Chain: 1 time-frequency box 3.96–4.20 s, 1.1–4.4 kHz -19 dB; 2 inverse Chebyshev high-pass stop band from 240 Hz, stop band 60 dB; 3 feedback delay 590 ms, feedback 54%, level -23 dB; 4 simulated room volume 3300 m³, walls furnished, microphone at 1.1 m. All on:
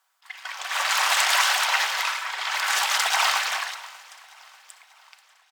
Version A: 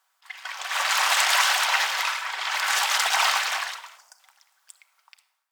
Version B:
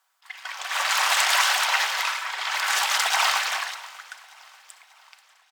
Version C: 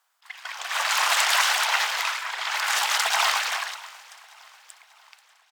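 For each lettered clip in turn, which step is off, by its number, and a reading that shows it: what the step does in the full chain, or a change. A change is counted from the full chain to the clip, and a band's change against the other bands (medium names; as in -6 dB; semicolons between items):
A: 3, momentary loudness spread change -1 LU; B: 1, momentary loudness spread change +2 LU; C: 4, echo-to-direct -8.0 dB to -21.5 dB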